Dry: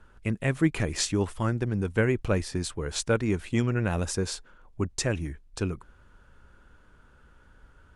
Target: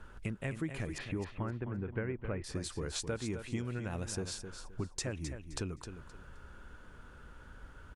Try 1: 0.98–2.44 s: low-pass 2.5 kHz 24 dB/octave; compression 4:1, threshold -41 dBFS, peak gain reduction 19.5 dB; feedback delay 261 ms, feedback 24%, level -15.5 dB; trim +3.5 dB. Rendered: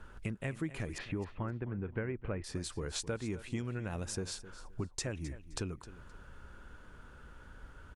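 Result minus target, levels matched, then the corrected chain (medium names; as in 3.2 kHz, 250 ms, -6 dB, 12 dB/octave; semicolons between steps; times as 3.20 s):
echo-to-direct -6.5 dB
0.98–2.44 s: low-pass 2.5 kHz 24 dB/octave; compression 4:1, threshold -41 dBFS, peak gain reduction 19.5 dB; feedback delay 261 ms, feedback 24%, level -9 dB; trim +3.5 dB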